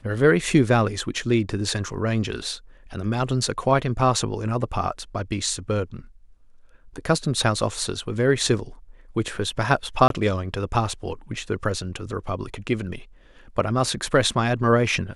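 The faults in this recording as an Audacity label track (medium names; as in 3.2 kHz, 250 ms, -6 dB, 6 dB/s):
10.080000	10.100000	dropout 22 ms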